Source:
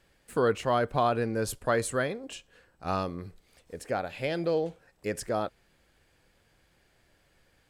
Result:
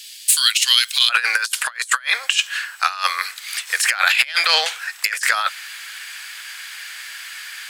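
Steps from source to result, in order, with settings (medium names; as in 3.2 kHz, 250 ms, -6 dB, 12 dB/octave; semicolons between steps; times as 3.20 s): inverse Chebyshev high-pass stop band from 550 Hz, stop band 80 dB, from 1.09 s stop band from 240 Hz; compressor with a negative ratio -48 dBFS, ratio -0.5; loudness maximiser +31.5 dB; trim -1 dB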